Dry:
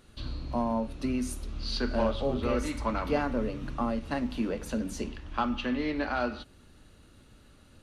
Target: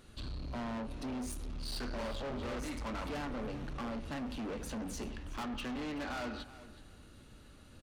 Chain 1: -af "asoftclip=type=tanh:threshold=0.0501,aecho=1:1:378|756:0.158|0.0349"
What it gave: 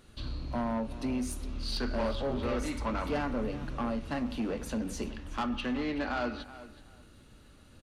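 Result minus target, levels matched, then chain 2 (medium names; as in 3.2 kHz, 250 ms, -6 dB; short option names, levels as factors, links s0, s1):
saturation: distortion -8 dB
-af "asoftclip=type=tanh:threshold=0.0141,aecho=1:1:378|756:0.158|0.0349"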